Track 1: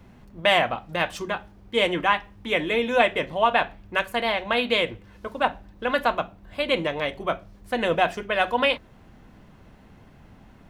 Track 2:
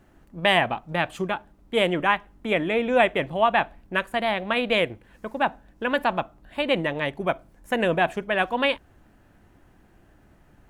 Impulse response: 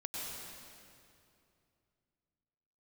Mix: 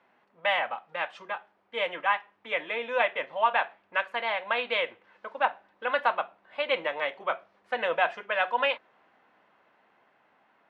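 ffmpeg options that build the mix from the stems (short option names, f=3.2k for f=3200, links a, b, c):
-filter_complex "[0:a]dynaudnorm=f=390:g=13:m=11.5dB,volume=-5dB[a];[1:a]volume=-1,volume=-10.5dB[b];[a][b]amix=inputs=2:normalize=0,highpass=690,lowpass=2.5k"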